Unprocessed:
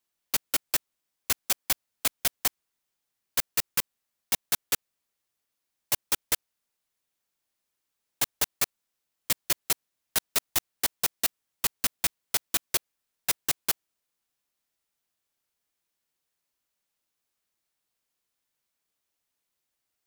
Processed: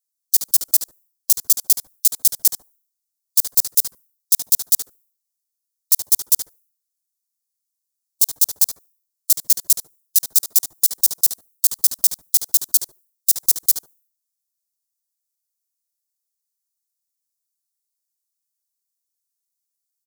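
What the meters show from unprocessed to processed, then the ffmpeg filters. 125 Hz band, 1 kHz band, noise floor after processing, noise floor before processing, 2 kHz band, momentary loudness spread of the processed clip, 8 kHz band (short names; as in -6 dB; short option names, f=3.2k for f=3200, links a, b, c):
n/a, under -10 dB, -81 dBFS, -83 dBFS, under -10 dB, 4 LU, +11.5 dB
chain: -filter_complex "[0:a]asplit=2[a][b];[b]adelay=73,lowpass=f=1.1k:p=1,volume=-5dB,asplit=2[c][d];[d]adelay=73,lowpass=f=1.1k:p=1,volume=0.21,asplit=2[e][f];[f]adelay=73,lowpass=f=1.1k:p=1,volume=0.21[g];[c][e][g]amix=inputs=3:normalize=0[h];[a][h]amix=inputs=2:normalize=0,asoftclip=type=hard:threshold=-24dB,afftdn=nr=24:nf=-55,alimiter=level_in=10dB:limit=-24dB:level=0:latency=1:release=21,volume=-10dB,aexciter=amount=10.1:drive=8.9:freq=4k,volume=-1dB"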